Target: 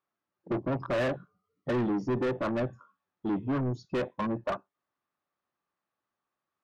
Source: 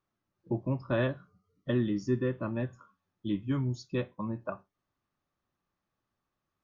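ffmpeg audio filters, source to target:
ffmpeg -i in.wav -filter_complex "[0:a]afwtdn=0.00708,asplit=2[link_01][link_02];[link_02]highpass=frequency=720:poles=1,volume=29dB,asoftclip=type=tanh:threshold=-17dB[link_03];[link_01][link_03]amix=inputs=2:normalize=0,lowpass=frequency=1900:poles=1,volume=-6dB,volume=-4dB" out.wav

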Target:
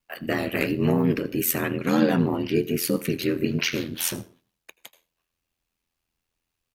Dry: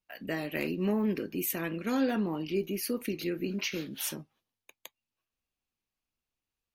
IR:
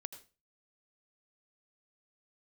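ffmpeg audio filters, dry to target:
-filter_complex "[0:a]asplit=2[link_01][link_02];[1:a]atrim=start_sample=2205[link_03];[link_02][link_03]afir=irnorm=-1:irlink=0,volume=-2dB[link_04];[link_01][link_04]amix=inputs=2:normalize=0,aeval=exprs='val(0)*sin(2*PI*42*n/s)':channel_layout=same,asplit=3[link_05][link_06][link_07];[link_06]asetrate=29433,aresample=44100,atempo=1.49831,volume=-12dB[link_08];[link_07]asetrate=35002,aresample=44100,atempo=1.25992,volume=-15dB[link_09];[link_05][link_08][link_09]amix=inputs=3:normalize=0,volume=7dB"

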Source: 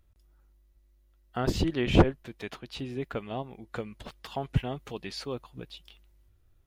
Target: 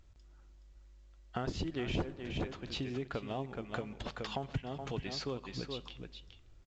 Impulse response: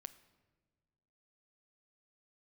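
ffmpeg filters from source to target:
-filter_complex "[0:a]aecho=1:1:422:0.335,asplit=2[link_01][link_02];[1:a]atrim=start_sample=2205[link_03];[link_02][link_03]afir=irnorm=-1:irlink=0,volume=5dB[link_04];[link_01][link_04]amix=inputs=2:normalize=0,acompressor=threshold=-34dB:ratio=4,volume=-2dB" -ar 16000 -c:a pcm_mulaw

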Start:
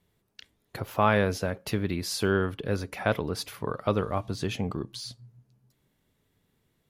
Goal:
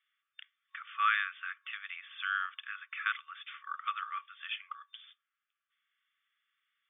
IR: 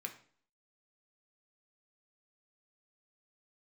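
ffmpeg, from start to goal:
-af "afftfilt=real='re*between(b*sr/4096,1100,3600)':imag='im*between(b*sr/4096,1100,3600)':win_size=4096:overlap=0.75"

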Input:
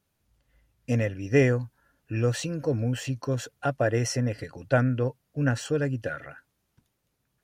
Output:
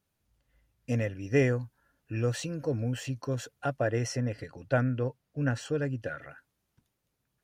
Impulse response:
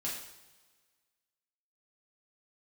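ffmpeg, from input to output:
-filter_complex "[0:a]asettb=1/sr,asplit=3[link_01][link_02][link_03];[link_01]atrim=end=3.794[link_04];[link_02]atrim=start=3.79:end=6.21,asetpts=PTS-STARTPTS,afade=type=in:duration=0.004:curve=qsin,afade=type=out:start_time=2.416:duration=0.004:curve=qsin,highshelf=frequency=7900:gain=-6.5[link_05];[link_03]atrim=start=6.206[link_06];[link_04][link_05]acrossfade=duration=0.004:curve1=hsin:curve2=qsin[link_07];[link_07][link_06]acrossfade=duration=0.004:curve1=qsin:curve2=hsin,volume=-4dB"

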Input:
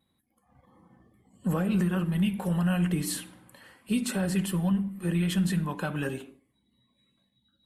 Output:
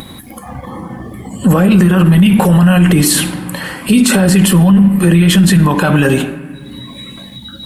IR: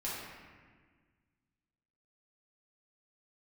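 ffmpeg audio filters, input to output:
-filter_complex "[0:a]acompressor=mode=upward:threshold=-46dB:ratio=2.5,asplit=2[link_01][link_02];[1:a]atrim=start_sample=2205[link_03];[link_02][link_03]afir=irnorm=-1:irlink=0,volume=-19.5dB[link_04];[link_01][link_04]amix=inputs=2:normalize=0,alimiter=level_in=28dB:limit=-1dB:release=50:level=0:latency=1,volume=-1dB"

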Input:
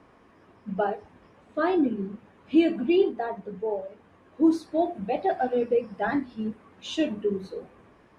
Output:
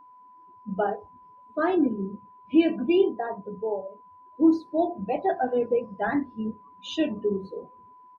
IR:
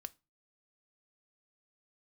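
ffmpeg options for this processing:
-filter_complex "[0:a]asplit=2[link_01][link_02];[link_02]adelay=31,volume=-12.5dB[link_03];[link_01][link_03]amix=inputs=2:normalize=0,afftdn=noise_reduction=20:noise_floor=-42,aeval=exprs='val(0)+0.00355*sin(2*PI*1000*n/s)':channel_layout=same"

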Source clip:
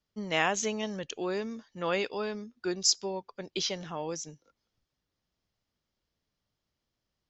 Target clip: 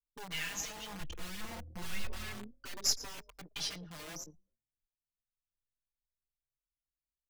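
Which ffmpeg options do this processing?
ffmpeg -i in.wav -filter_complex "[0:a]aeval=exprs='if(lt(val(0),0),0.447*val(0),val(0))':channel_layout=same,asettb=1/sr,asplit=3[link_01][link_02][link_03];[link_01]atrim=end=1.004[link_04];[link_02]atrim=start=1:end=2.08,asetpts=PTS-STARTPTS,afade=type=in:duration=0.004:curve=qsin,afade=type=out:start_time=1.076:duration=0.004:curve=qsin,aemphasis=mode=reproduction:type=bsi[link_05];[link_03]atrim=start=2.076[link_06];[link_04][link_05]acrossfade=duration=0.004:curve1=hsin:curve2=qsin[link_07];[link_07][link_06]acrossfade=duration=0.004:curve1=qsin:curve2=hsin,asplit=5[link_08][link_09][link_10][link_11][link_12];[link_09]adelay=114,afreqshift=40,volume=-17dB[link_13];[link_10]adelay=228,afreqshift=80,volume=-23dB[link_14];[link_11]adelay=342,afreqshift=120,volume=-29dB[link_15];[link_12]adelay=456,afreqshift=160,volume=-35.1dB[link_16];[link_08][link_13][link_14][link_15][link_16]amix=inputs=5:normalize=0,anlmdn=0.158,acrossover=split=160|1600[link_17][link_18][link_19];[link_18]aeval=exprs='(mod(89.1*val(0)+1,2)-1)/89.1':channel_layout=same[link_20];[link_19]asplit=2[link_21][link_22];[link_22]adelay=21,volume=-11dB[link_23];[link_21][link_23]amix=inputs=2:normalize=0[link_24];[link_17][link_20][link_24]amix=inputs=3:normalize=0,asplit=2[link_25][link_26];[link_26]adelay=4.6,afreqshift=0.32[link_27];[link_25][link_27]amix=inputs=2:normalize=1" out.wav

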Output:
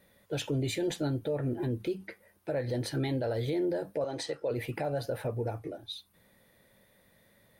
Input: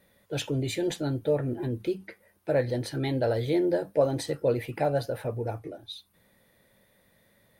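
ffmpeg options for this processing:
ffmpeg -i in.wav -filter_complex "[0:a]asettb=1/sr,asplit=3[link_01][link_02][link_03];[link_01]atrim=end=4.044[link_04];[link_02]atrim=start=4.04:end=4.51,asetpts=PTS-STARTPTS,afade=type=in:duration=0.004:curve=qsin,afade=type=out:start_time=0.466:duration=0.004:curve=qsin,acrossover=split=380 8000:gain=0.224 1 0.126[link_05][link_06][link_07];[link_05][link_06][link_07]amix=inputs=3:normalize=0[link_08];[link_03]atrim=start=4.506[link_09];[link_04][link_08]acrossfade=duration=0.004:curve1=hsin:curve2=qsin[link_10];[link_10][link_09]acrossfade=duration=0.004:curve1=qsin:curve2=hsin,alimiter=limit=-23.5dB:level=0:latency=1:release=117" out.wav

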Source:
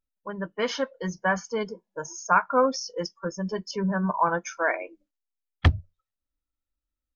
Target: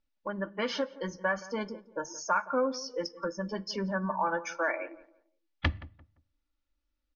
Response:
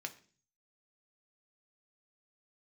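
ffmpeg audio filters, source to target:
-filter_complex "[0:a]lowpass=frequency=5500:width=0.5412,lowpass=frequency=5500:width=1.3066,aecho=1:1:3.5:0.52,acompressor=threshold=-40dB:ratio=2,asplit=2[link_01][link_02];[link_02]adelay=172,lowpass=frequency=1400:poles=1,volume=-17dB,asplit=2[link_03][link_04];[link_04]adelay=172,lowpass=frequency=1400:poles=1,volume=0.28,asplit=2[link_05][link_06];[link_06]adelay=172,lowpass=frequency=1400:poles=1,volume=0.28[link_07];[link_01][link_03][link_05][link_07]amix=inputs=4:normalize=0,asplit=2[link_08][link_09];[1:a]atrim=start_sample=2205,asetrate=48510,aresample=44100[link_10];[link_09][link_10]afir=irnorm=-1:irlink=0,volume=-4.5dB[link_11];[link_08][link_11]amix=inputs=2:normalize=0,volume=2dB"

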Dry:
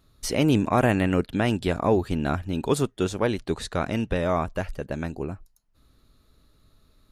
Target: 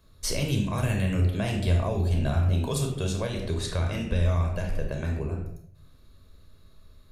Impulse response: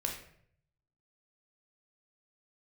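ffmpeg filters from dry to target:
-filter_complex "[1:a]atrim=start_sample=2205[link_01];[0:a][link_01]afir=irnorm=-1:irlink=0,acrossover=split=150|3000[link_02][link_03][link_04];[link_03]acompressor=threshold=-32dB:ratio=6[link_05];[link_02][link_05][link_04]amix=inputs=3:normalize=0,asettb=1/sr,asplit=3[link_06][link_07][link_08];[link_06]atrim=end=1.224[link_09];[link_07]atrim=start=1.22:end=3.66,asetpts=PTS-STARTPTS,afade=type=in:duration=0.004:curve=qsin,afade=type=out:start_time=2.436:duration=0.004:curve=qsin,equalizer=frequency=670:width_type=o:width=0.4:gain=6.5[link_10];[link_08]atrim=start=3.656[link_11];[link_09][link_10]acrossfade=duration=0.004:curve1=hsin:curve2=qsin[link_12];[link_12][link_11]acrossfade=duration=0.004:curve1=qsin:curve2=hsin"

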